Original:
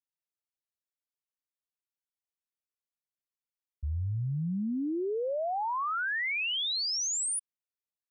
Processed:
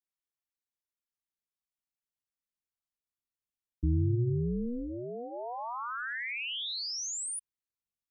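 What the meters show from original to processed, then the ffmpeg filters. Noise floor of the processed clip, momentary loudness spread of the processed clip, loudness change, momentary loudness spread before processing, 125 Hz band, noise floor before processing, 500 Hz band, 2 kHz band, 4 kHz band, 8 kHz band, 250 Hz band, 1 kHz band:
under -85 dBFS, 10 LU, -3.0 dB, 6 LU, +3.0 dB, under -85 dBFS, -4.5 dB, -5.5 dB, -5.0 dB, -5.0 dB, -1.0 dB, -6.0 dB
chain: -af "asubboost=boost=4:cutoff=180,tremolo=f=240:d=0.919,bandreject=f=540:w=12,volume=0.891"

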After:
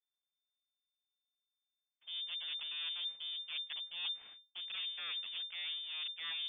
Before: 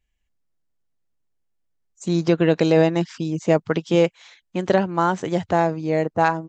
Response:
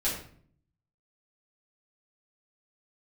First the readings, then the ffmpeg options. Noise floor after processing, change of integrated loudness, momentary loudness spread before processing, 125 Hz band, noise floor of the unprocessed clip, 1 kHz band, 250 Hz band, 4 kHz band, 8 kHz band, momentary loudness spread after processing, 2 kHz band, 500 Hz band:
under -85 dBFS, -18.5 dB, 8 LU, under -40 dB, -73 dBFS, -36.0 dB, under -40 dB, +1.0 dB, no reading, 5 LU, -17.0 dB, under -40 dB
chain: -af "agate=range=0.1:threshold=0.00398:ratio=16:detection=peak,highshelf=f=2600:g=-9.5,areverse,acompressor=threshold=0.0141:ratio=12,areverse,aeval=exprs='abs(val(0))':c=same,lowpass=f=3100:t=q:w=0.5098,lowpass=f=3100:t=q:w=0.6013,lowpass=f=3100:t=q:w=0.9,lowpass=f=3100:t=q:w=2.563,afreqshift=-3600,volume=0.891"

